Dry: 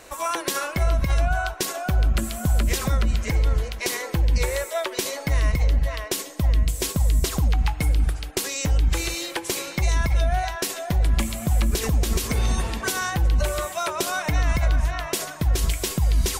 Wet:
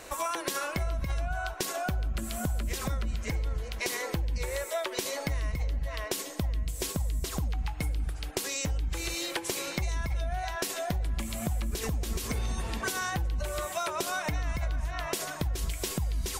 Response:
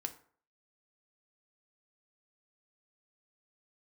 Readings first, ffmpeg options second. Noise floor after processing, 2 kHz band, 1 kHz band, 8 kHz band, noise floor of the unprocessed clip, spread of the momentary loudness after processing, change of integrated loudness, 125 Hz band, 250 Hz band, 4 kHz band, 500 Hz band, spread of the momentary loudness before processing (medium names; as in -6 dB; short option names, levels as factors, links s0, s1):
-39 dBFS, -6.5 dB, -6.5 dB, -6.5 dB, -36 dBFS, 2 LU, -8.5 dB, -10.0 dB, -7.5 dB, -6.5 dB, -6.5 dB, 5 LU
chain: -af "acompressor=threshold=0.0355:ratio=5"